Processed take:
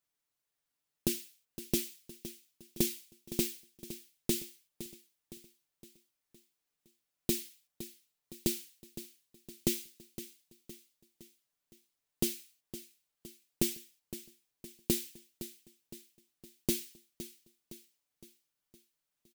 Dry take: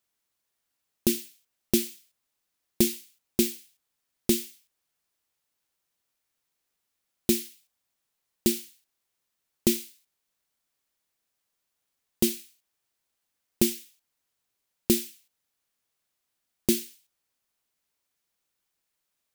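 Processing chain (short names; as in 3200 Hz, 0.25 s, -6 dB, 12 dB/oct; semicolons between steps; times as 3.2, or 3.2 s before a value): low shelf 330 Hz +2.5 dB; comb 6.8 ms, depth 53%; feedback echo 0.513 s, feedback 50%, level -13.5 dB; gain -7.5 dB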